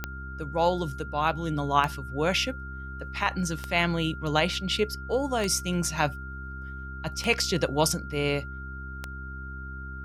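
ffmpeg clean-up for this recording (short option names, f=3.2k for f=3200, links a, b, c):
-af "adeclick=t=4,bandreject=f=65.7:t=h:w=4,bandreject=f=131.4:t=h:w=4,bandreject=f=197.1:t=h:w=4,bandreject=f=262.8:t=h:w=4,bandreject=f=328.5:t=h:w=4,bandreject=f=394.2:t=h:w=4,bandreject=f=1.4k:w=30"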